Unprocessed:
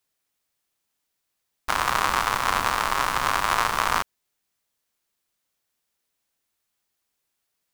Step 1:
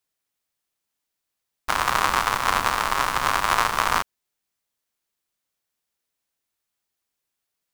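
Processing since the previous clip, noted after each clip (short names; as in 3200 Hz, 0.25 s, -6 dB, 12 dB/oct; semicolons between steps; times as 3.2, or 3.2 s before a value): upward expander 1.5:1, over -33 dBFS; gain +3 dB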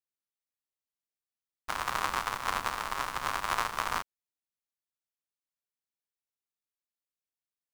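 upward expander 1.5:1, over -35 dBFS; gain -8.5 dB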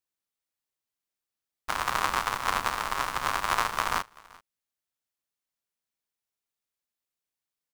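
echo 0.385 s -24 dB; gain +4 dB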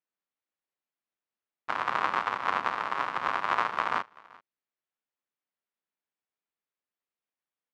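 BPF 180–2500 Hz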